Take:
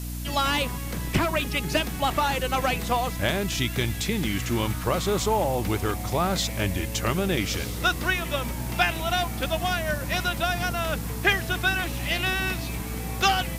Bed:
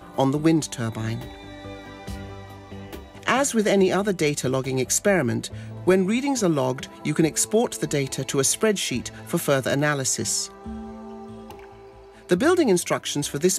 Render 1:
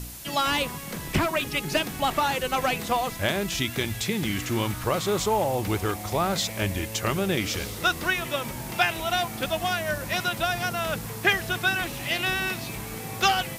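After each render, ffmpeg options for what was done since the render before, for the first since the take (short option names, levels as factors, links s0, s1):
-af "bandreject=f=60:t=h:w=4,bandreject=f=120:t=h:w=4,bandreject=f=180:t=h:w=4,bandreject=f=240:t=h:w=4,bandreject=f=300:t=h:w=4"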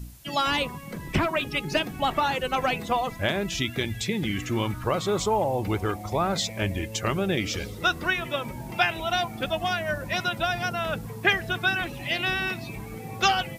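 -af "afftdn=nr=12:nf=-36"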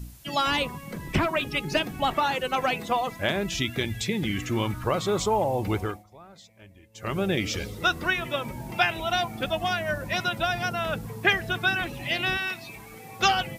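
-filter_complex "[0:a]asettb=1/sr,asplit=3[s0][s1][s2];[s0]atrim=end=2.144[s3];[s1]atrim=start=2.14:end=3.28,asetpts=PTS-STARTPTS,afade=t=in:d=0.004:c=qsin,afade=t=out:st=1.136:d=0.004:c=qsin,lowshelf=f=88:g=-11.5[s4];[s2]atrim=start=3.276[s5];[s3][s4]acrossfade=d=0.004:c1=hsin:c2=qsin[s6];[s6][s5]acrossfade=d=0.004:c1=qsin:c2=hsin,asettb=1/sr,asplit=3[s7][s8][s9];[s7]atrim=end=12.374[s10];[s8]atrim=start=12.37:end=13.2,asetpts=PTS-STARTPTS,afade=t=in:d=0.004:c=qsin,afade=t=out:st=0.826:d=0.004:c=qsin,lowshelf=f=470:g=-12[s11];[s9]atrim=start=13.196[s12];[s10][s11]acrossfade=d=0.004:c1=hsin:c2=qsin[s13];[s13][s12]acrossfade=d=0.004:c1=qsin:c2=hsin,asplit=3[s14][s15][s16];[s14]atrim=end=6.05,asetpts=PTS-STARTPTS,afade=t=out:st=5.79:d=0.26:silence=0.0668344[s17];[s15]atrim=start=6.05:end=6.94,asetpts=PTS-STARTPTS,volume=0.0668[s18];[s16]atrim=start=6.94,asetpts=PTS-STARTPTS,afade=t=in:d=0.26:silence=0.0668344[s19];[s17][s18][s19]concat=n=3:v=0:a=1"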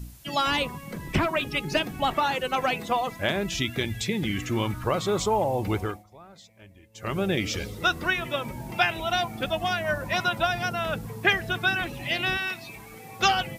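-filter_complex "[0:a]asettb=1/sr,asplit=3[s0][s1][s2];[s0]atrim=end=9.844[s3];[s1]atrim=start=9.84:end=10.47,asetpts=PTS-STARTPTS,afade=t=in:d=0.004:c=qsin,afade=t=out:st=0.626:d=0.004:c=qsin,equalizer=f=980:w=1.5:g=5.5[s4];[s2]atrim=start=10.466[s5];[s3][s4]acrossfade=d=0.004:c1=hsin:c2=qsin[s6];[s6][s5]acrossfade=d=0.004:c1=qsin:c2=hsin"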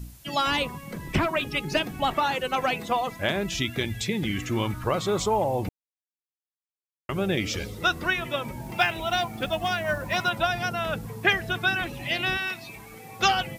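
-filter_complex "[0:a]asettb=1/sr,asplit=3[s0][s1][s2];[s0]atrim=end=8.644[s3];[s1]atrim=start=8.64:end=10.3,asetpts=PTS-STARTPTS,afade=t=in:d=0.004:c=qsin,afade=t=out:st=1.656:d=0.004:c=qsin,acrusher=bits=7:mode=log:mix=0:aa=0.000001[s4];[s2]atrim=start=10.296[s5];[s3][s4]acrossfade=d=0.004:c1=hsin:c2=qsin[s6];[s6][s5]acrossfade=d=0.004:c1=qsin:c2=hsin,asplit=3[s7][s8][s9];[s7]atrim=end=5.69,asetpts=PTS-STARTPTS,afade=t=out:st=5.686:d=0.004:c=hsin[s10];[s8]atrim=start=5.69:end=7.09,asetpts=PTS-STARTPTS,volume=0[s11];[s9]atrim=start=7.09,asetpts=PTS-STARTPTS,afade=t=in:d=0.004:c=hsin[s12];[s10][s11][s12]concat=n=3:v=0:a=1"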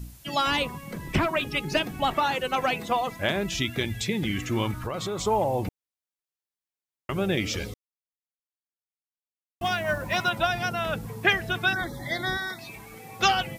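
-filter_complex "[0:a]asettb=1/sr,asplit=3[s0][s1][s2];[s0]atrim=end=4.714[s3];[s1]atrim=start=4.71:end=5.26,asetpts=PTS-STARTPTS,afade=t=in:d=0.004:c=qsin,afade=t=out:st=0.546:d=0.004:c=qsin,acompressor=threshold=0.0447:ratio=6:attack=3.2:release=140:knee=1:detection=peak[s4];[s2]atrim=start=5.256[s5];[s3][s4]acrossfade=d=0.004:c1=hsin:c2=qsin[s6];[s6][s5]acrossfade=d=0.004:c1=qsin:c2=hsin,asettb=1/sr,asplit=3[s7][s8][s9];[s7]atrim=end=11.734[s10];[s8]atrim=start=11.73:end=12.59,asetpts=PTS-STARTPTS,afade=t=in:d=0.004:c=qsin,afade=t=out:st=0.856:d=0.004:c=qsin,asuperstop=centerf=2700:order=12:qfactor=2.3[s11];[s9]atrim=start=12.586[s12];[s10][s11]acrossfade=d=0.004:c1=hsin:c2=qsin[s13];[s13][s12]acrossfade=d=0.004:c1=qsin:c2=hsin,asplit=3[s14][s15][s16];[s14]atrim=end=7.74,asetpts=PTS-STARTPTS,afade=t=out:st=7.736:d=0.004:c=hsin[s17];[s15]atrim=start=7.74:end=9.61,asetpts=PTS-STARTPTS,volume=0[s18];[s16]atrim=start=9.61,asetpts=PTS-STARTPTS,afade=t=in:d=0.004:c=hsin[s19];[s17][s18][s19]concat=n=3:v=0:a=1"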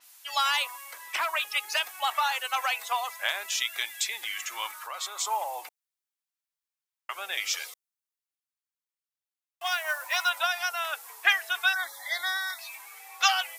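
-af "highpass=f=850:w=0.5412,highpass=f=850:w=1.3066,adynamicequalizer=threshold=0.00562:dfrequency=5800:dqfactor=0.7:tfrequency=5800:tqfactor=0.7:attack=5:release=100:ratio=0.375:range=4:mode=boostabove:tftype=highshelf"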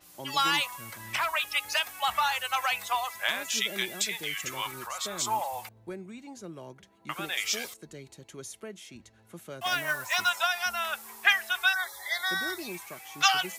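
-filter_complex "[1:a]volume=0.0841[s0];[0:a][s0]amix=inputs=2:normalize=0"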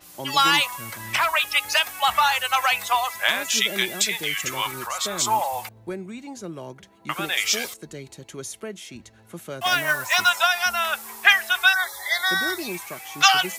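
-af "volume=2.37,alimiter=limit=0.891:level=0:latency=1"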